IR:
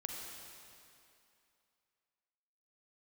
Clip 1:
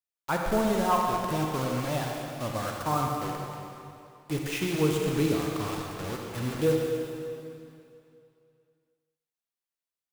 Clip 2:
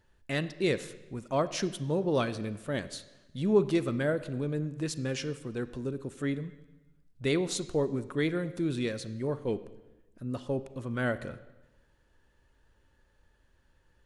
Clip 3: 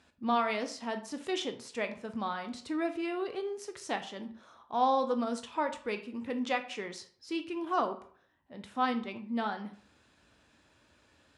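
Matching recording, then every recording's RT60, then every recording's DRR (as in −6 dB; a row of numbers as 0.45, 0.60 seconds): 1; 2.6, 1.1, 0.50 seconds; 0.0, 13.5, 7.5 decibels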